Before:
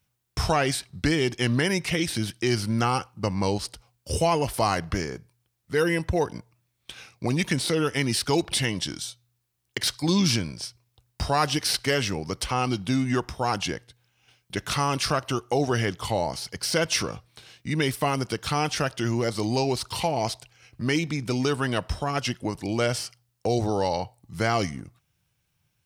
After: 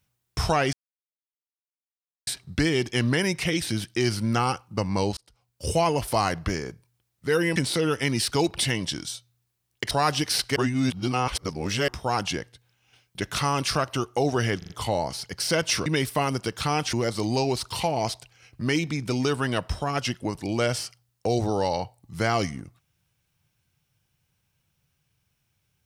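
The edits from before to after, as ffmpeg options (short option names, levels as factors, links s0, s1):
-filter_complex "[0:a]asplit=12[s0][s1][s2][s3][s4][s5][s6][s7][s8][s9][s10][s11];[s0]atrim=end=0.73,asetpts=PTS-STARTPTS,afade=t=out:st=0.726:d=0.004:c=hsin,apad=pad_dur=1.54[s12];[s1]atrim=start=0.73:end=3.63,asetpts=PTS-STARTPTS,afade=t=in:d=0.004:c=hsin,afade=t=out:st=2.896:d=0.004:c=hsin[s13];[s2]atrim=start=3.63:end=6.022,asetpts=PTS-STARTPTS,afade=t=in:d=0.58[s14];[s3]atrim=start=7.498:end=9.852[s15];[s4]atrim=start=11.258:end=11.912[s16];[s5]atrim=start=11.908:end=13.232,asetpts=PTS-STARTPTS,areverse[s17];[s6]atrim=start=13.228:end=15.972[s18];[s7]atrim=start=15.928:end=15.972[s19];[s8]atrim=start=15.928:end=15.972[s20];[s9]atrim=start=15.928:end=17.092[s21];[s10]atrim=start=17.718:end=18.792[s22];[s11]atrim=start=19.128[s23];[s12][s13][s14]concat=n=3:v=0:a=1[s24];[s24][s15]acrossfade=d=0.004:c1=hsin:c2=hsin[s25];[s25][s16]acrossfade=d=0.004:c1=hsin:c2=hsin[s26];[s26][s17]acrossfade=d=0.004:c1=hsin:c2=hsin[s27];[s27][s18]acrossfade=d=0.004:c1=hsin:c2=hsin[s28];[s28][s19]acrossfade=d=0.004:c1=hsin:c2=hsin[s29];[s29][s20]acrossfade=d=0.004:c1=hsin:c2=hsin[s30];[s30][s21]acrossfade=d=0.004:c1=hsin:c2=hsin[s31];[s31][s22]acrossfade=d=0.004:c1=hsin:c2=hsin[s32];[s32][s23]acrossfade=d=0.004:c1=hsin:c2=hsin"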